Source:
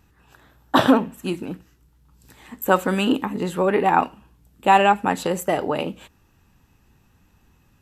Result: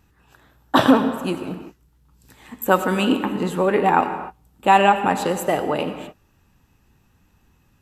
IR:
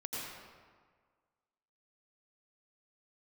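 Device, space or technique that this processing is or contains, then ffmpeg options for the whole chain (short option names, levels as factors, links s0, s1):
keyed gated reverb: -filter_complex "[0:a]asplit=3[s0][s1][s2];[1:a]atrim=start_sample=2205[s3];[s1][s3]afir=irnorm=-1:irlink=0[s4];[s2]apad=whole_len=344477[s5];[s4][s5]sidechaingate=range=0.0224:threshold=0.00447:ratio=16:detection=peak,volume=0.376[s6];[s0][s6]amix=inputs=2:normalize=0,volume=0.891"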